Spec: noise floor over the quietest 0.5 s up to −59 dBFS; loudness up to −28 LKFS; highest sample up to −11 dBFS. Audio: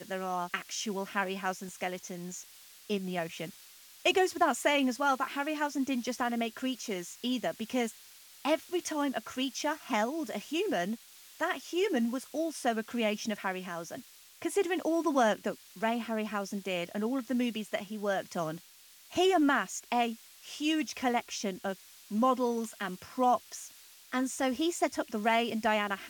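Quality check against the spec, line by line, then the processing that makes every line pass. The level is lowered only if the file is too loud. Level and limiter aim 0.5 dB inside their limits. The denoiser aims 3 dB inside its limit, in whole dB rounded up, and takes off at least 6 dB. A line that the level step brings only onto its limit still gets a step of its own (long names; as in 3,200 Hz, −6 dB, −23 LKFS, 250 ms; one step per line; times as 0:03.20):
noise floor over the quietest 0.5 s −57 dBFS: out of spec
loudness −32.0 LKFS: in spec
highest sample −14.5 dBFS: in spec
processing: broadband denoise 6 dB, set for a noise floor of −57 dBFS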